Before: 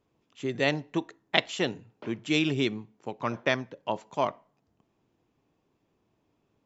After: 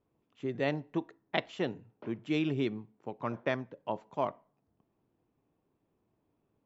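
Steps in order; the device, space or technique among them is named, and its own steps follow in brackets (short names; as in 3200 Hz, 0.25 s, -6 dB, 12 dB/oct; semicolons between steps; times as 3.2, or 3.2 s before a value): through cloth (LPF 6700 Hz 12 dB/oct; high shelf 2500 Hz -13 dB); gain -3.5 dB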